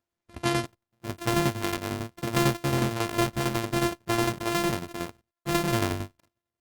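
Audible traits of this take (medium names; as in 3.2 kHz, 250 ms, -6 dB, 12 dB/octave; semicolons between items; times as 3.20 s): a buzz of ramps at a fixed pitch in blocks of 128 samples; tremolo saw down 11 Hz, depth 60%; Opus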